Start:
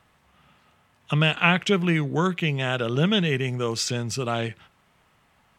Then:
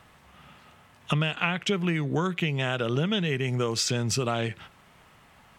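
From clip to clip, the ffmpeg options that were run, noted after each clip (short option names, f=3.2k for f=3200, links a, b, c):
-af "acompressor=threshold=-30dB:ratio=6,volume=6.5dB"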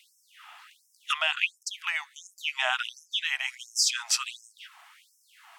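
-af "afftfilt=real='re*gte(b*sr/1024,630*pow(5300/630,0.5+0.5*sin(2*PI*1.4*pts/sr)))':imag='im*gte(b*sr/1024,630*pow(5300/630,0.5+0.5*sin(2*PI*1.4*pts/sr)))':win_size=1024:overlap=0.75,volume=4.5dB"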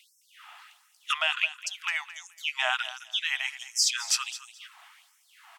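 -af "aecho=1:1:214|428:0.178|0.0338"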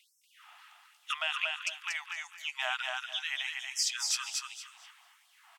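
-af "aecho=1:1:236|472|708:0.668|0.14|0.0295,volume=-6.5dB"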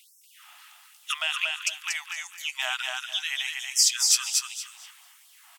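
-af "crystalizer=i=3.5:c=0"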